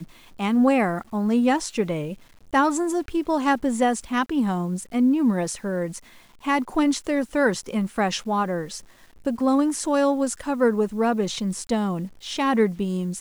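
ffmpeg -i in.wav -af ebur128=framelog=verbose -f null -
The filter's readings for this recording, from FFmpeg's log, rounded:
Integrated loudness:
  I:         -23.4 LUFS
  Threshold: -33.7 LUFS
Loudness range:
  LRA:         2.0 LU
  Threshold: -43.8 LUFS
  LRA low:   -24.8 LUFS
  LRA high:  -22.8 LUFS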